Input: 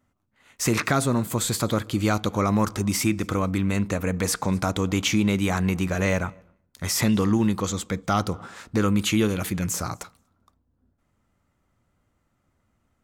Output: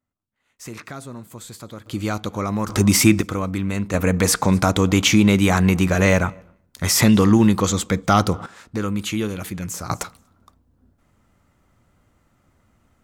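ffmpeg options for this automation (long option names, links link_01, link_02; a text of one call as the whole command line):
ffmpeg -i in.wav -af "asetnsamples=nb_out_samples=441:pad=0,asendcmd='1.86 volume volume -2dB;2.69 volume volume 9dB;3.21 volume volume 0dB;3.94 volume volume 7dB;8.46 volume volume -2.5dB;9.9 volume volume 9dB',volume=-13dB" out.wav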